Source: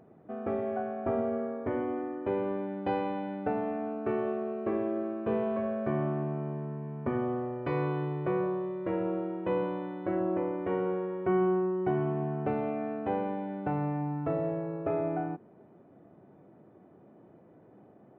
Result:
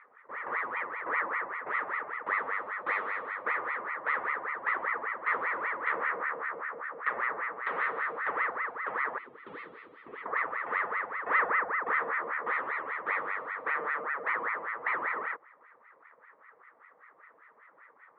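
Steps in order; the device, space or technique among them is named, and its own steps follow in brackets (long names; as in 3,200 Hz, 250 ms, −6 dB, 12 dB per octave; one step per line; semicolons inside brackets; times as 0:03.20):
voice changer toy (ring modulator whose carrier an LFO sweeps 1,000 Hz, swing 70%, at 5.1 Hz; loudspeaker in its box 460–3,500 Hz, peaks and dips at 470 Hz +8 dB, 720 Hz −6 dB, 1,200 Hz +8 dB, 1,900 Hz +10 dB, 2,800 Hz −6 dB)
0:09.18–0:10.26: flat-topped bell 1,100 Hz −15.5 dB 2.3 octaves
level −2.5 dB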